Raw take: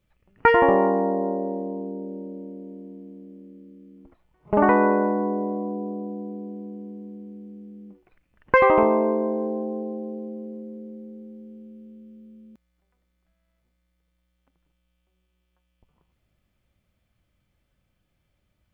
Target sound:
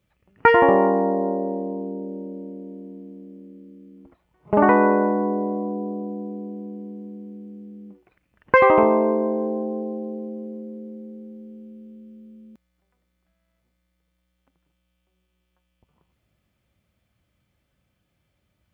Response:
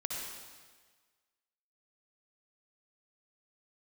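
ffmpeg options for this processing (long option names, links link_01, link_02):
-af "highpass=61,volume=2dB"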